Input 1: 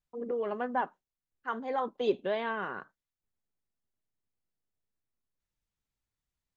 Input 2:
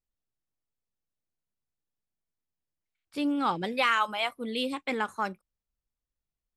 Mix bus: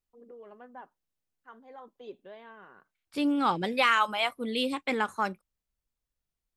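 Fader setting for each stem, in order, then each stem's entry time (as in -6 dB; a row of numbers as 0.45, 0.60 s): -16.0, +1.5 dB; 0.00, 0.00 s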